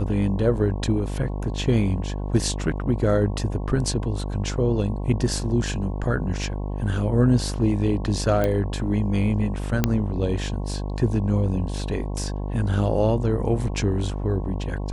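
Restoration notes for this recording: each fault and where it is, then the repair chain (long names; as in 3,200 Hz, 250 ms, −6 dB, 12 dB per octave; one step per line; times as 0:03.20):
mains buzz 50 Hz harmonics 22 −28 dBFS
0:08.44: click −11 dBFS
0:09.84: click −5 dBFS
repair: click removal
hum removal 50 Hz, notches 22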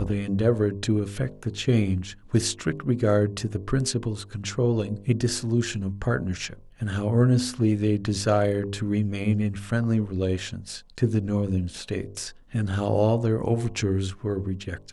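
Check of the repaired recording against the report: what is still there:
none of them is left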